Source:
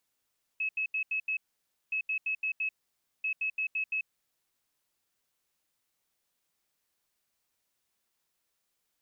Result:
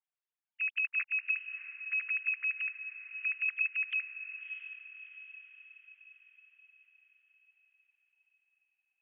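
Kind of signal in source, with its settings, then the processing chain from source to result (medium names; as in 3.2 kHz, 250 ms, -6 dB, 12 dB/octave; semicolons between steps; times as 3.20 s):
beep pattern sine 2.58 kHz, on 0.09 s, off 0.08 s, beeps 5, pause 0.55 s, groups 3, -28 dBFS
formants replaced by sine waves; on a send: echo that smears into a reverb 655 ms, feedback 51%, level -10.5 dB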